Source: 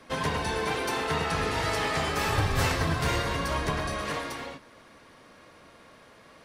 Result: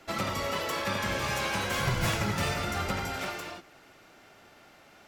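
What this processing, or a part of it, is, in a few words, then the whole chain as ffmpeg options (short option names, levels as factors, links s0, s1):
nightcore: -af "asetrate=56007,aresample=44100,volume=0.75"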